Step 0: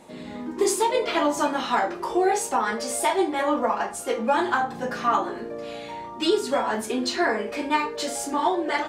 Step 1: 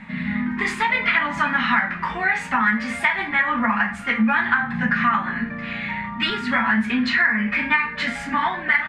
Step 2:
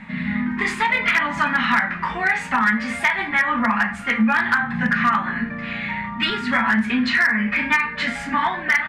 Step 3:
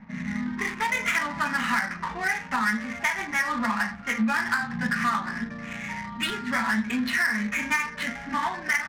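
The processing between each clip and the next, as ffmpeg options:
ffmpeg -i in.wav -af "firequalizer=gain_entry='entry(120,0);entry(210,10);entry(330,-24);entry(1000,-3);entry(1900,13);entry(3000,-2);entry(5800,-19);entry(12000,-28)':delay=0.05:min_phase=1,acompressor=threshold=-25dB:ratio=4,lowshelf=frequency=95:gain=5.5,volume=8.5dB" out.wav
ffmpeg -i in.wav -af "volume=11.5dB,asoftclip=hard,volume=-11.5dB,volume=1dB" out.wav
ffmpeg -i in.wav -af "adynamicsmooth=sensitivity=3:basefreq=860,volume=-6.5dB" out.wav

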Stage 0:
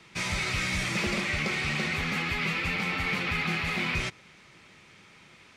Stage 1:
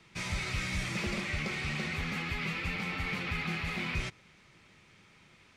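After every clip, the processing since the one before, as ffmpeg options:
ffmpeg -i in.wav -af "lowshelf=frequency=130:gain=7.5,volume=-6.5dB" out.wav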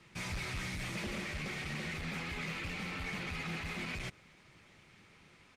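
ffmpeg -i in.wav -af "asoftclip=type=tanh:threshold=-34.5dB,aresample=32000,aresample=44100,volume=1dB" -ar 48000 -c:a libopus -b:a 20k out.opus

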